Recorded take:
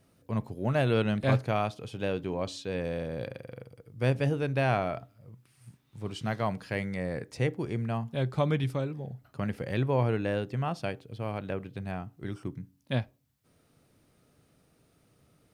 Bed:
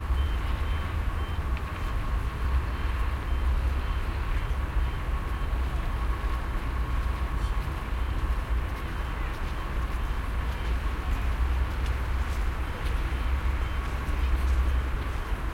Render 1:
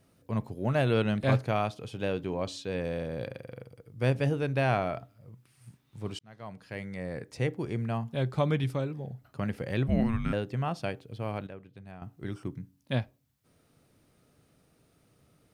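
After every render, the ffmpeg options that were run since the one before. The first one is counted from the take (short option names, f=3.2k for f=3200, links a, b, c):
-filter_complex "[0:a]asettb=1/sr,asplit=3[a][b][c];[a]atrim=end=9.874[d];[b]atrim=start=9.87:end=10.33,asetpts=PTS-STARTPTS,afade=t=in:d=0.004:c=qsin,afade=t=out:st=0.456:d=0.004:c=qsin,afreqshift=-340[e];[c]atrim=start=10.326[f];[d][e]acrossfade=d=0.004:c1=hsin:c2=qsin[g];[g][f]acrossfade=d=0.004:c1=qsin:c2=hsin,asplit=4[h][i][j][k];[h]atrim=end=6.19,asetpts=PTS-STARTPTS,afade=t=out:st=6.186:d=0.004:c=hsin[l];[i]atrim=start=6.19:end=11.472,asetpts=PTS-STARTPTS,afade=t=in:d=1.87:c=qsin[m];[j]atrim=start=11.468:end=12.022,asetpts=PTS-STARTPTS,volume=-11dB[n];[k]atrim=start=12.018[o];[l][m]concat=n=2:v=0:a=1[p];[p][n]acrossfade=d=0.004:c1=hsin:c2=hsin[q];[q][o]acrossfade=d=0.004:c1=hsin:c2=hsin"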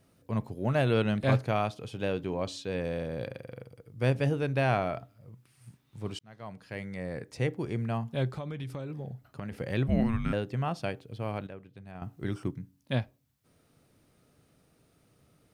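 -filter_complex "[0:a]asettb=1/sr,asplit=3[a][b][c];[a]atrim=end=8.354[d];[b]atrim=start=8.35:end=9.52,asetpts=PTS-STARTPTS,afade=t=in:d=0.004:c=qsin,afade=t=out:st=1.166:d=0.004:c=qsin,acompressor=threshold=-33dB:ratio=16:attack=3.2:release=140:knee=1:detection=peak[e];[c]atrim=start=9.516[f];[d][e]acrossfade=d=0.004:c1=hsin:c2=qsin[g];[g][f]acrossfade=d=0.004:c1=qsin:c2=hsin,asplit=3[h][i][j];[h]atrim=end=11.952[k];[i]atrim=start=11.948:end=12.512,asetpts=PTS-STARTPTS,volume=3.5dB[l];[j]atrim=start=12.508[m];[k][l]acrossfade=d=0.004:c1=hsin:c2=hsin[n];[n][m]acrossfade=d=0.004:c1=hsin:c2=hsin"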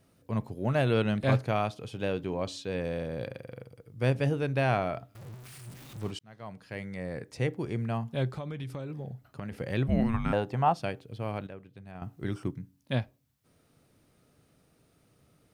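-filter_complex "[0:a]asettb=1/sr,asplit=3[a][b][c];[a]atrim=end=5.154[d];[b]atrim=start=5.15:end=6.11,asetpts=PTS-STARTPTS,afade=t=in:d=0.004:c=qsin,afade=t=out:st=0.956:d=0.004:c=qsin,aeval=exprs='val(0)+0.5*0.00708*sgn(val(0))':c=same[e];[c]atrim=start=6.106[f];[d][e]acrossfade=d=0.004:c1=hsin:c2=qsin[g];[g][f]acrossfade=d=0.004:c1=qsin:c2=hsin,asettb=1/sr,asplit=3[h][i][j];[h]atrim=end=10.144[k];[i]atrim=start=10.14:end=10.74,asetpts=PTS-STARTPTS,afade=t=in:d=0.004:c=qsin,afade=t=out:st=0.596:d=0.004:c=qsin,equalizer=f=840:t=o:w=0.8:g=13.5[l];[j]atrim=start=10.736[m];[k][l]acrossfade=d=0.004:c1=hsin:c2=qsin[n];[n][m]acrossfade=d=0.004:c1=qsin:c2=hsin"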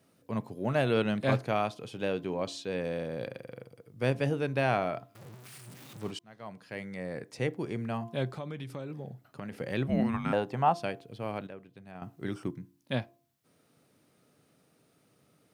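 -af "highpass=150,bandreject=f=343.7:t=h:w=4,bandreject=f=687.4:t=h:w=4,bandreject=f=1.0311k:t=h:w=4"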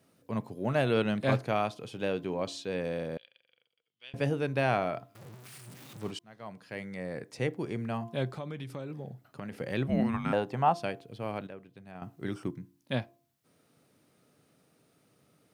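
-filter_complex "[0:a]asettb=1/sr,asplit=3[a][b][c];[a]atrim=end=3.174[d];[b]atrim=start=3.17:end=4.14,asetpts=PTS-STARTPTS,afade=t=in:d=0.004:c=qsin,afade=t=out:st=0.966:d=0.004:c=qsin,bandpass=f=3.1k:t=q:w=7.3[e];[c]atrim=start=4.136[f];[d][e]acrossfade=d=0.004:c1=hsin:c2=qsin[g];[g][f]acrossfade=d=0.004:c1=qsin:c2=hsin"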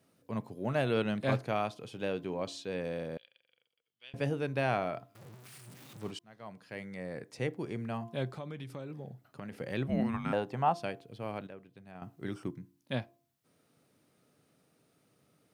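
-af "volume=-3dB"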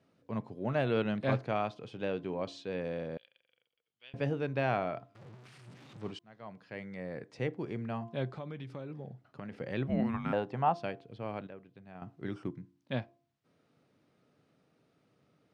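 -af "lowpass=5.7k,highshelf=f=4.4k:g=-6.5"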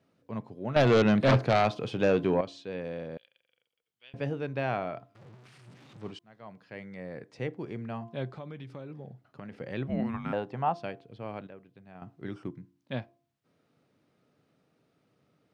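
-filter_complex "[0:a]asettb=1/sr,asplit=3[a][b][c];[a]atrim=end=0.764[d];[b]atrim=start=0.76:end=2.41,asetpts=PTS-STARTPTS,afade=t=in:d=0.004:c=qsin,afade=t=out:st=1.646:d=0.004:c=qsin,aeval=exprs='0.15*sin(PI/2*2.51*val(0)/0.15)':c=same[e];[c]atrim=start=2.406[f];[d][e]acrossfade=d=0.004:c1=hsin:c2=qsin[g];[g][f]acrossfade=d=0.004:c1=qsin:c2=hsin"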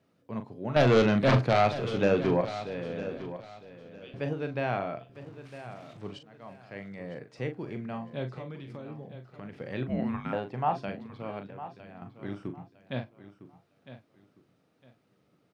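-filter_complex "[0:a]asplit=2[a][b];[b]adelay=40,volume=-8.5dB[c];[a][c]amix=inputs=2:normalize=0,aecho=1:1:956|1912|2868:0.211|0.055|0.0143"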